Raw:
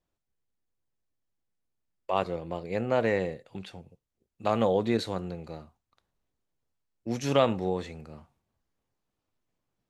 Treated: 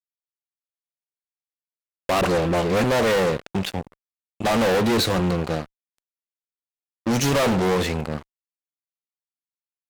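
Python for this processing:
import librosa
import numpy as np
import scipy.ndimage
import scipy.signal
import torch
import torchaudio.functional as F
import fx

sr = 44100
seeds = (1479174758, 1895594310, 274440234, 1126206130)

y = fx.dispersion(x, sr, late='highs', ms=47.0, hz=710.0, at=(2.21, 2.84))
y = fx.fuzz(y, sr, gain_db=39.0, gate_db=-48.0)
y = F.gain(torch.from_numpy(y), -4.5).numpy()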